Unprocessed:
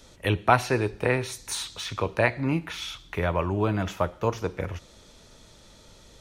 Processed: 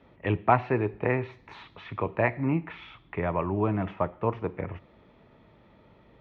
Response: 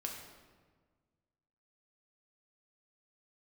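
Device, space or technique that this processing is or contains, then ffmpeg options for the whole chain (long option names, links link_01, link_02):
bass cabinet: -af "highpass=74,equalizer=frequency=80:width_type=q:width=4:gain=-7,equalizer=frequency=520:width_type=q:width=4:gain=-4,equalizer=frequency=1500:width_type=q:width=4:gain=-8,lowpass=frequency=2200:width=0.5412,lowpass=frequency=2200:width=1.3066"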